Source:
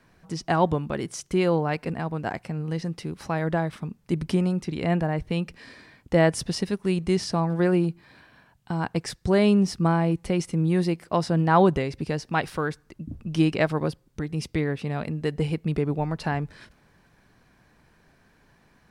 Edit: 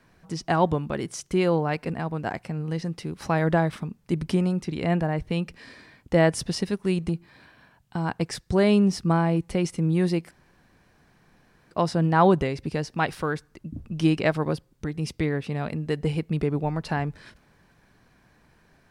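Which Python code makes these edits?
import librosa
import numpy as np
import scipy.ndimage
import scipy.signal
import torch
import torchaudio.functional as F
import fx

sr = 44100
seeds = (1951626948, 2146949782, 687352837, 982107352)

y = fx.edit(x, sr, fx.clip_gain(start_s=3.22, length_s=0.61, db=3.5),
    fx.cut(start_s=7.09, length_s=0.75),
    fx.insert_room_tone(at_s=11.06, length_s=1.4), tone=tone)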